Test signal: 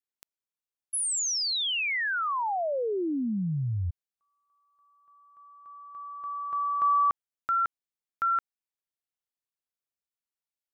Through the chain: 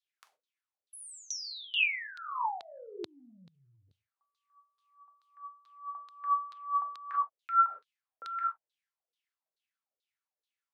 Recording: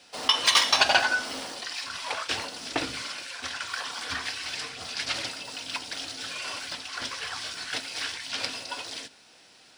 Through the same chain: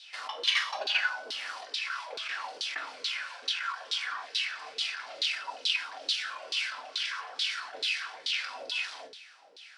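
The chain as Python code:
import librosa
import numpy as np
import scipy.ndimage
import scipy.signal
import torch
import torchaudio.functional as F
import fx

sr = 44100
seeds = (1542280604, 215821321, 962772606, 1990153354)

p1 = fx.doubler(x, sr, ms=42.0, db=-13.0)
p2 = fx.rev_gated(p1, sr, seeds[0], gate_ms=150, shape='falling', drr_db=3.0)
p3 = fx.over_compress(p2, sr, threshold_db=-36.0, ratio=-1.0)
p4 = p2 + (p3 * 10.0 ** (2.0 / 20.0))
p5 = fx.harmonic_tremolo(p4, sr, hz=2.2, depth_pct=50, crossover_hz=1600.0)
p6 = fx.peak_eq(p5, sr, hz=130.0, db=-4.0, octaves=2.6)
p7 = fx.filter_lfo_bandpass(p6, sr, shape='saw_down', hz=2.3, low_hz=410.0, high_hz=4000.0, q=5.1)
p8 = scipy.signal.sosfilt(scipy.signal.butter(4, 100.0, 'highpass', fs=sr, output='sos'), p7)
y = fx.high_shelf(p8, sr, hz=2700.0, db=10.0)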